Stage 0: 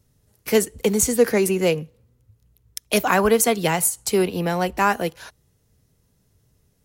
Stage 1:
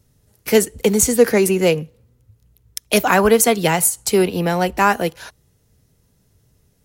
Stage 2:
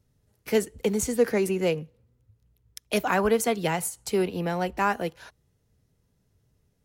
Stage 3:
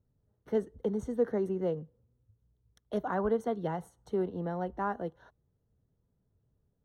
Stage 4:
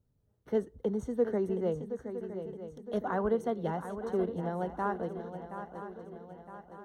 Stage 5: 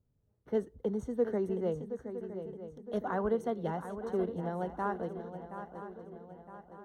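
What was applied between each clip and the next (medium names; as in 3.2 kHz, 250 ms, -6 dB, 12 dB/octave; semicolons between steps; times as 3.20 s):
band-stop 1.1 kHz, Q 24; trim +4 dB
treble shelf 5.3 kHz -7.5 dB; trim -9 dB
boxcar filter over 18 samples; trim -6 dB
shuffle delay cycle 963 ms, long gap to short 3:1, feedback 48%, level -10 dB
tape noise reduction on one side only decoder only; trim -1.5 dB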